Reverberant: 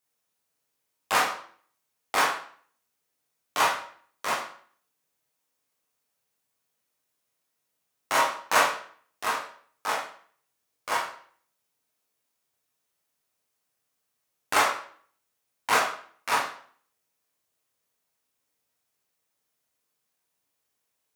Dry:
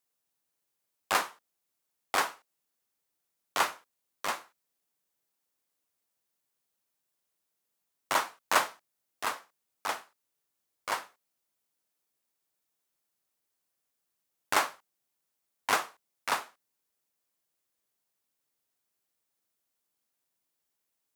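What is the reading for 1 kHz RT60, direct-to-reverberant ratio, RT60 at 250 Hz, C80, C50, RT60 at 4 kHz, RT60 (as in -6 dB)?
0.50 s, -4.5 dB, 0.50 s, 10.0 dB, 5.5 dB, 0.45 s, 0.50 s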